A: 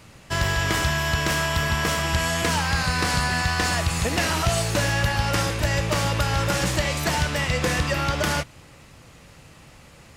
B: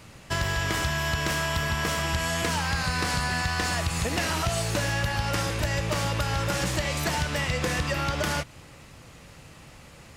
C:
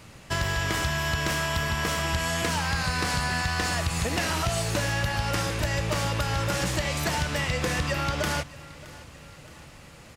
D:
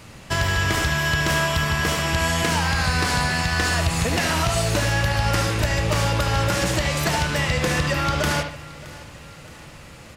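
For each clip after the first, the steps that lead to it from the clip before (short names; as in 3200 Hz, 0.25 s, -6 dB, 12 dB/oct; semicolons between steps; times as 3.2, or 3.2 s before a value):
compressor 2.5:1, threshold -25 dBFS, peak gain reduction 6 dB
feedback echo 0.62 s, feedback 51%, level -20 dB
analogue delay 73 ms, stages 2048, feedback 30%, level -7 dB; gain +4.5 dB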